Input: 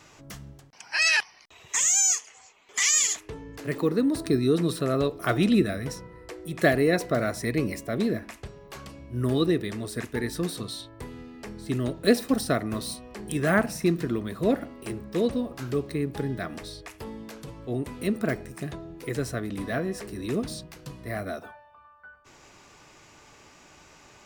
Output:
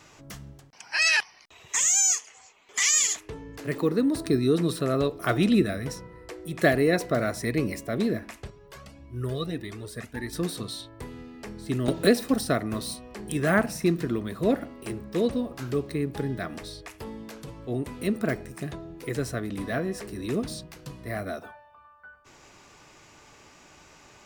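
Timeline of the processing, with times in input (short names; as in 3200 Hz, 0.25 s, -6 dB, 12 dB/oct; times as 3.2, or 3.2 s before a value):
8.5–10.33 cascading flanger rising 1.7 Hz
11.88–12.29 three-band squash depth 70%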